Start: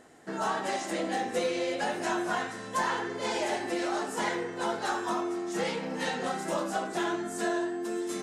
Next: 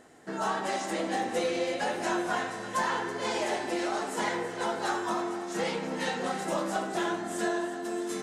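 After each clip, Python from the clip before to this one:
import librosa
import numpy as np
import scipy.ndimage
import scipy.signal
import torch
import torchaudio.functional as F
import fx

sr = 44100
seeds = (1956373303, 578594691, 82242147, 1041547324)

y = fx.echo_alternate(x, sr, ms=164, hz=1200.0, feedback_pct=79, wet_db=-11)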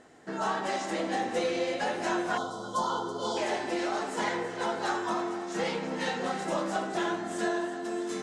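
y = fx.spec_box(x, sr, start_s=2.38, length_s=0.99, low_hz=1500.0, high_hz=3000.0, gain_db=-28)
y = scipy.signal.sosfilt(scipy.signal.butter(2, 7600.0, 'lowpass', fs=sr, output='sos'), y)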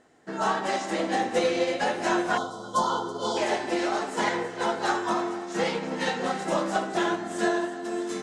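y = fx.upward_expand(x, sr, threshold_db=-47.0, expansion=1.5)
y = y * librosa.db_to_amplitude(6.0)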